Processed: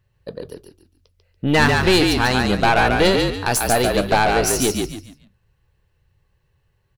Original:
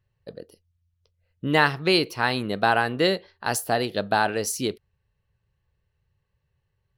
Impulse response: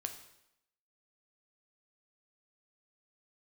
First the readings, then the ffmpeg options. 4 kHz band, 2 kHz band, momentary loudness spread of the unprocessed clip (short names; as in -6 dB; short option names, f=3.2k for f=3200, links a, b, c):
+6.0 dB, +5.5 dB, 8 LU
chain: -filter_complex "[0:a]aeval=exprs='(tanh(8.91*val(0)+0.4)-tanh(0.4))/8.91':c=same,asplit=5[a][b][c][d][e];[b]adelay=143,afreqshift=-49,volume=-3.5dB[f];[c]adelay=286,afreqshift=-98,volume=-13.4dB[g];[d]adelay=429,afreqshift=-147,volume=-23.3dB[h];[e]adelay=572,afreqshift=-196,volume=-33.2dB[i];[a][f][g][h][i]amix=inputs=5:normalize=0,volume=9dB"